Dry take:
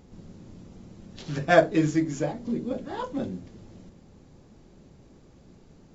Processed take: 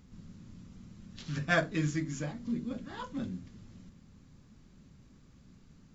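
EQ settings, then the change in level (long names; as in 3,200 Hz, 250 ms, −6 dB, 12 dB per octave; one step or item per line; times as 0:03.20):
flat-topped bell 530 Hz −10 dB
−3.5 dB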